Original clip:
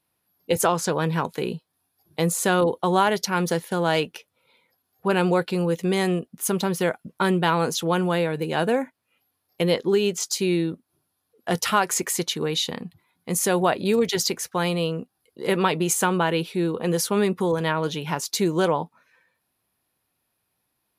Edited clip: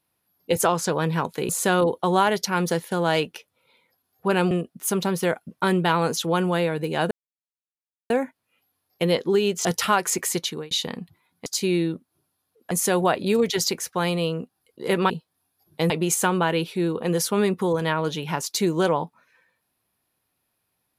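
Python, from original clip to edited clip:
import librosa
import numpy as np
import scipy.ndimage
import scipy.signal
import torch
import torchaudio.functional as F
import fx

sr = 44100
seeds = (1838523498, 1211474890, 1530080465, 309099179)

y = fx.edit(x, sr, fx.move(start_s=1.49, length_s=0.8, to_s=15.69),
    fx.cut(start_s=5.31, length_s=0.78),
    fx.insert_silence(at_s=8.69, length_s=0.99),
    fx.move(start_s=10.24, length_s=1.25, to_s=13.3),
    fx.fade_out_span(start_s=12.19, length_s=0.36, curve='qsin'), tone=tone)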